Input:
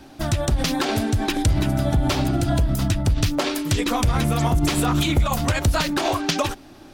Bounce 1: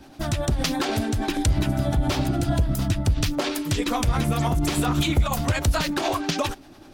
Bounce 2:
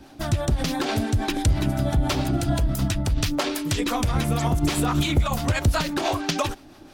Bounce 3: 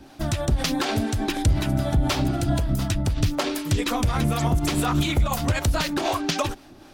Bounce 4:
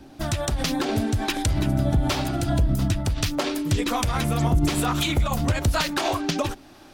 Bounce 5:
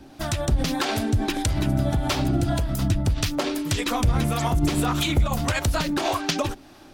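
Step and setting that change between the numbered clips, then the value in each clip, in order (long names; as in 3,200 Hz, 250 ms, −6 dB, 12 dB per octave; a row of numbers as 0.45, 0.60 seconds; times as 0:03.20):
two-band tremolo in antiphase, speed: 10, 6, 4, 1.1, 1.7 Hertz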